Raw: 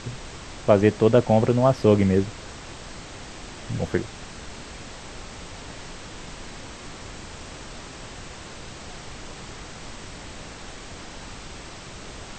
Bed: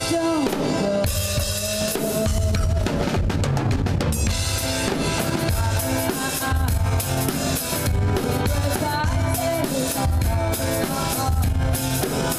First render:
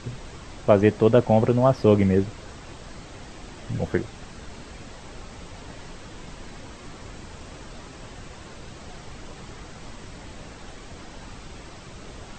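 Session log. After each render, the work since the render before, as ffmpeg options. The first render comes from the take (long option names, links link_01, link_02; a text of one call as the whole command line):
ffmpeg -i in.wav -af "afftdn=noise_reduction=6:noise_floor=-40" out.wav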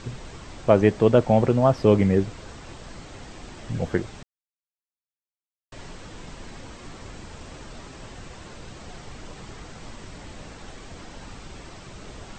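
ffmpeg -i in.wav -filter_complex "[0:a]asplit=3[link_01][link_02][link_03];[link_01]atrim=end=4.23,asetpts=PTS-STARTPTS,afade=type=out:start_time=4.226:duration=0.004:curve=hsin[link_04];[link_02]atrim=start=4.23:end=5.72,asetpts=PTS-STARTPTS,volume=0[link_05];[link_03]atrim=start=5.72,asetpts=PTS-STARTPTS,afade=type=in:duration=0.004:curve=hsin[link_06];[link_04][link_05][link_06]concat=n=3:v=0:a=1" out.wav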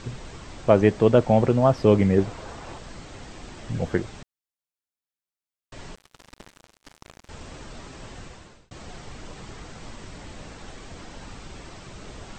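ffmpeg -i in.wav -filter_complex "[0:a]asettb=1/sr,asplit=3[link_01][link_02][link_03];[link_01]atrim=end=2.184[link_04];[link_02]atrim=start=2.18:end=2.79,asetpts=PTS-STARTPTS,afade=type=in:duration=0.004:curve=qsin,afade=type=out:start_time=0.606:duration=0.004:curve=qsin,equalizer=frequency=790:width_type=o:width=1.7:gain=7[link_05];[link_03]atrim=start=2.786[link_06];[link_04][link_05]acrossfade=duration=0.004:curve1=hsin:curve2=qsin[link_07];[link_07][link_06]acrossfade=duration=0.004:curve1=qsin:curve2=hsin,asettb=1/sr,asplit=3[link_08][link_09][link_10];[link_08]atrim=end=5.954[link_11];[link_09]atrim=start=5.95:end=7.29,asetpts=PTS-STARTPTS,afade=type=in:duration=0.004:curve=qsin,afade=type=out:start_time=1.336:duration=0.004:curve=qsin,acrusher=bits=4:mix=0:aa=0.5[link_12];[link_10]atrim=start=7.286[link_13];[link_11][link_12]acrossfade=duration=0.004:curve1=hsin:curve2=qsin[link_14];[link_14][link_13]acrossfade=duration=0.004:curve1=qsin:curve2=hsin,asplit=2[link_15][link_16];[link_15]atrim=end=8.71,asetpts=PTS-STARTPTS,afade=type=out:start_time=8.21:duration=0.5[link_17];[link_16]atrim=start=8.71,asetpts=PTS-STARTPTS,afade=type=in:duration=0.004:curve=hsin[link_18];[link_17][link_18]concat=n=2:v=0:a=1" out.wav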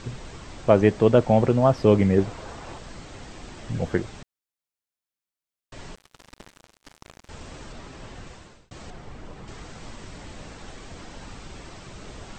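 ffmpeg -i in.wav -filter_complex "[0:a]asettb=1/sr,asplit=3[link_01][link_02][link_03];[link_01]atrim=end=7.724[link_04];[link_02]atrim=start=7.72:end=8.27,asetpts=PTS-STARTPTS,afade=type=in:duration=0.004:curve=qsin,afade=type=out:start_time=0.546:duration=0.004:curve=qsin,highshelf=frequency=6600:gain=-6.5[link_05];[link_03]atrim=start=8.266[link_06];[link_04][link_05]acrossfade=duration=0.004:curve1=hsin:curve2=qsin[link_07];[link_07][link_06]acrossfade=duration=0.004:curve1=qsin:curve2=hsin,asettb=1/sr,asplit=3[link_08][link_09][link_10];[link_08]atrim=end=8.904[link_11];[link_09]atrim=start=8.9:end=9.48,asetpts=PTS-STARTPTS,afade=type=in:duration=0.004:curve=qsin,afade=type=out:start_time=0.576:duration=0.004:curve=qsin,highshelf=frequency=2800:gain=-11[link_12];[link_10]atrim=start=9.476[link_13];[link_11][link_12]acrossfade=duration=0.004:curve1=hsin:curve2=qsin[link_14];[link_14][link_13]acrossfade=duration=0.004:curve1=qsin:curve2=hsin" out.wav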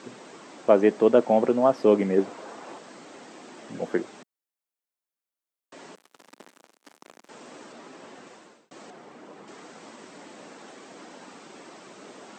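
ffmpeg -i in.wav -af "highpass=frequency=230:width=0.5412,highpass=frequency=230:width=1.3066,equalizer=frequency=3900:width_type=o:width=2.3:gain=-5" out.wav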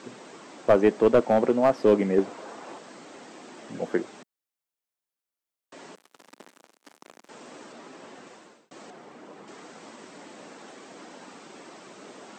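ffmpeg -i in.wav -af "aeval=exprs='clip(val(0),-1,0.224)':channel_layout=same" out.wav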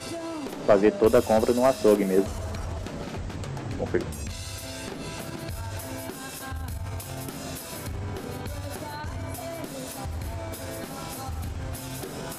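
ffmpeg -i in.wav -i bed.wav -filter_complex "[1:a]volume=-13dB[link_01];[0:a][link_01]amix=inputs=2:normalize=0" out.wav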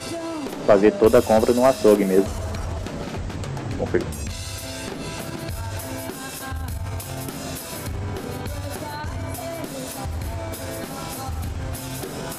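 ffmpeg -i in.wav -af "volume=4.5dB,alimiter=limit=-2dB:level=0:latency=1" out.wav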